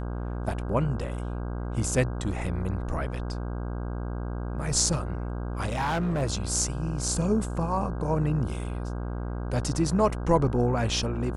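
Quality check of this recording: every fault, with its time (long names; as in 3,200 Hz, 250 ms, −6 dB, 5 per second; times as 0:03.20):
mains buzz 60 Hz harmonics 27 −32 dBFS
0:05.69–0:06.23: clipping −23.5 dBFS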